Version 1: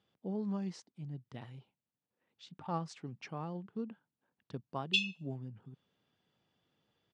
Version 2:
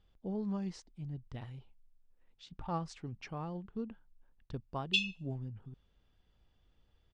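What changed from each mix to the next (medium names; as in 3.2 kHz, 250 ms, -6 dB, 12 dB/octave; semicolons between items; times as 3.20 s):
speech: remove high-pass 130 Hz 24 dB/octave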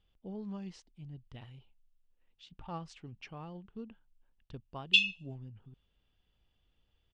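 speech -5.0 dB; master: add peaking EQ 2.9 kHz +8 dB 0.63 oct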